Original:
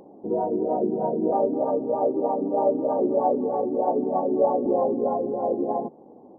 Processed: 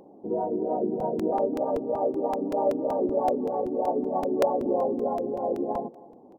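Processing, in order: delay 266 ms -21 dB; crackling interface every 0.19 s, samples 128, repeat, from 1.00 s; trim -3 dB

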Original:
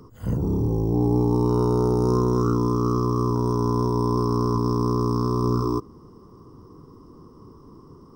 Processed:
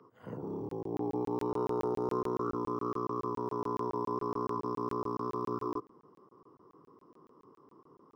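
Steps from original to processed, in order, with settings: high-pass 120 Hz 24 dB/octave; three-band isolator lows -13 dB, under 350 Hz, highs -19 dB, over 3 kHz; crackling interface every 0.14 s, samples 1024, zero, from 0.69 s; trim -6.5 dB

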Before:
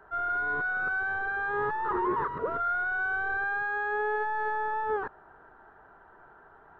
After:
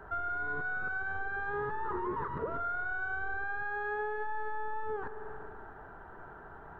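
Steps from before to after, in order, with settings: bass shelf 240 Hz +10 dB; spring tank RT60 1.6 s, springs 46 ms, chirp 80 ms, DRR 12 dB; compression 4:1, threshold -38 dBFS, peak gain reduction 14 dB; trim +3.5 dB

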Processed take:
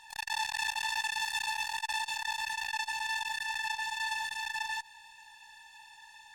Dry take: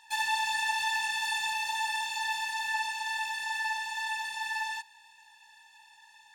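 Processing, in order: bass shelf 120 Hz +12 dB; in parallel at -7 dB: one-sided clip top -40.5 dBFS; on the sum: transformer saturation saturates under 4 kHz

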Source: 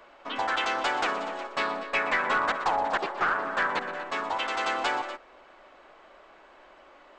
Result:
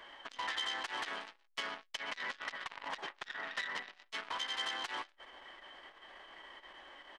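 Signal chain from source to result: small resonant body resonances 1.6/2.6 kHz, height 16 dB, ringing for 40 ms; formant shift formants +3 st; compression 5:1, threshold -31 dBFS, peak gain reduction 14.5 dB; on a send: delay 133 ms -22 dB; on the sum: transformer saturation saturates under 3.6 kHz; trim -2.5 dB

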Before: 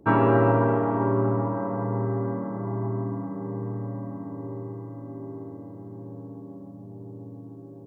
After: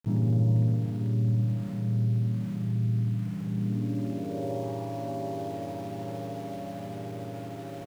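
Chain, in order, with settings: local Wiener filter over 15 samples; peaking EQ 690 Hz +8 dB 0.3 oct; hum notches 60/120/180/240/300/360 Hz; in parallel at 0 dB: compression, threshold -36 dBFS, peak gain reduction 19.5 dB; on the sum: low-pass sweep 150 Hz -> 820 Hz, 3.45–4.68 s; small samples zeroed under -40.5 dBFS; early reflections 31 ms -9.5 dB, 60 ms -6.5 dB; on a send at -14.5 dB: reverberation RT60 1.0 s, pre-delay 80 ms; on the sum: trim -4 dB

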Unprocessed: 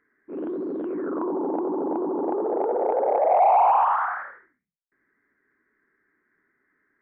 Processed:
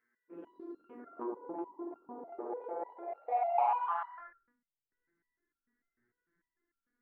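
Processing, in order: tilt EQ +2 dB/octave, from 4.17 s -3 dB/octave; resonator arpeggio 6.7 Hz 120–1400 Hz

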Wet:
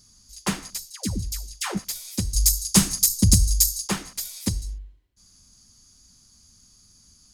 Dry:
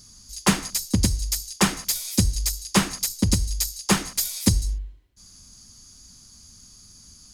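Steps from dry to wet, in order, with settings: 0.90–1.79 s: phase dispersion lows, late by 137 ms, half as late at 740 Hz; 2.33–3.88 s: tone controls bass +12 dB, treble +15 dB; trim -6.5 dB

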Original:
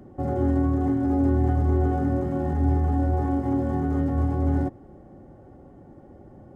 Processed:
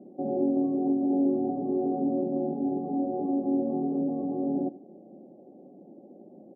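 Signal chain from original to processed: elliptic band-pass 190–690 Hz, stop band 50 dB; on a send: delay 85 ms -19 dB

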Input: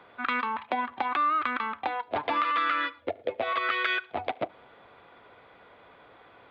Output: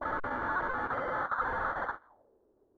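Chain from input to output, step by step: formant shift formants +2 st; on a send: reverse echo 166 ms -11 dB; on the sum: gate with hold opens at -41 dBFS; in parallel at -3 dB: compressor with a negative ratio -35 dBFS, ratio -1; on the sum: sample-and-hold 40×; peaking EQ 71 Hz -14.5 dB 0.72 oct; saturation -31.5 dBFS, distortion -7 dB; speed mistake 33 rpm record played at 78 rpm; hard clipper -36 dBFS, distortion -14 dB; touch-sensitive low-pass 340–1400 Hz up, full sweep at -44 dBFS

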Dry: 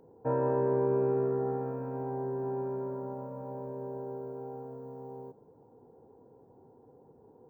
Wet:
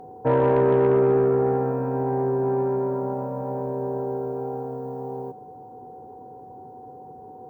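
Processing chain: Chebyshev shaper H 5 -22 dB, 8 -37 dB, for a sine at -18 dBFS; whistle 750 Hz -50 dBFS; trim +8.5 dB

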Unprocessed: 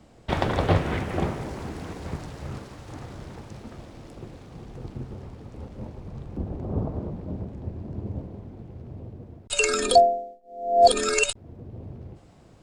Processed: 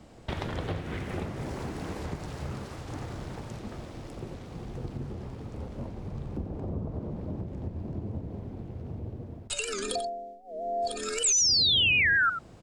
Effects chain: dynamic bell 790 Hz, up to -5 dB, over -37 dBFS, Q 0.94; compression 5:1, threshold -33 dBFS, peak gain reduction 16 dB; painted sound fall, 11.24–12.30 s, 1.3–7.8 kHz -25 dBFS; delay 91 ms -9.5 dB; warped record 78 rpm, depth 160 cents; trim +1.5 dB

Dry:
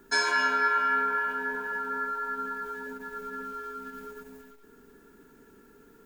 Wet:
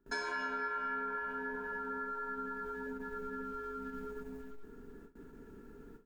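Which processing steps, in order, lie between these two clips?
gate with hold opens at -46 dBFS; tilt EQ -2.5 dB/octave; compression 2.5:1, threshold -38 dBFS, peak gain reduction 11 dB; trim -1.5 dB

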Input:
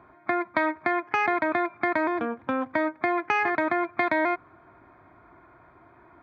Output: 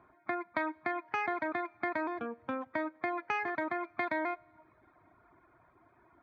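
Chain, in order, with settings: Schroeder reverb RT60 1.9 s, combs from 32 ms, DRR 15.5 dB; reverb removal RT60 0.76 s; trim -8.5 dB

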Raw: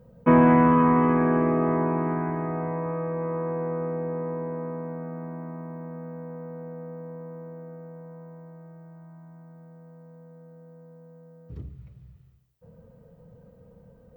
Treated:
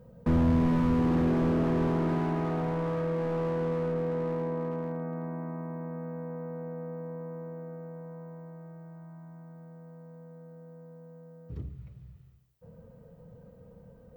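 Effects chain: slew-rate limiter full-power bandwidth 20 Hz

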